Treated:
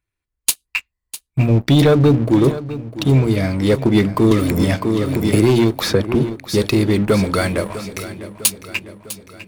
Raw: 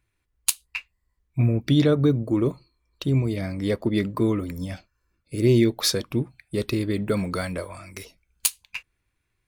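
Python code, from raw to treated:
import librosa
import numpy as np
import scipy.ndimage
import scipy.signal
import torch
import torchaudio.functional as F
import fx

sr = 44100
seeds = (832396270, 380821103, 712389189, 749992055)

y = fx.hum_notches(x, sr, base_hz=60, count=6)
y = fx.leveller(y, sr, passes=3)
y = fx.echo_feedback(y, sr, ms=652, feedback_pct=55, wet_db=-14.5)
y = fx.band_squash(y, sr, depth_pct=100, at=(4.31, 6.15))
y = y * librosa.db_to_amplitude(-1.0)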